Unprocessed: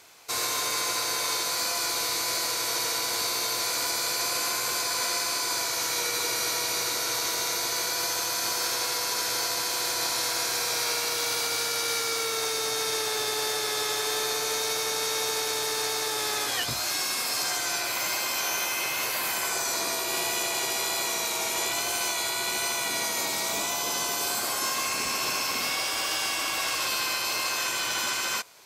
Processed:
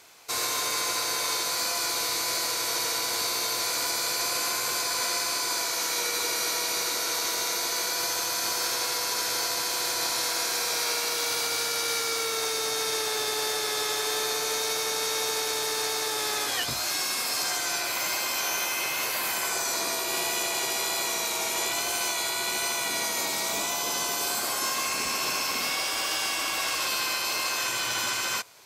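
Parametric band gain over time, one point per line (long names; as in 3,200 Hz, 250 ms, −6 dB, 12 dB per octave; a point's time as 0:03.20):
parametric band 110 Hz 0.35 octaves
−2.5 dB
from 0:05.53 −14.5 dB
from 0:07.99 −4 dB
from 0:10.26 −11.5 dB
from 0:11.30 −4.5 dB
from 0:27.62 +6.5 dB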